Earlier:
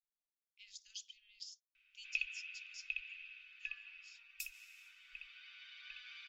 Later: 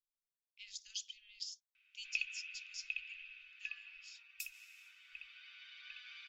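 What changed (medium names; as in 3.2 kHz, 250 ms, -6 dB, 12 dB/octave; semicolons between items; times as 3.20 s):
speech +5.5 dB; background: add high-pass 68 Hz 6 dB/octave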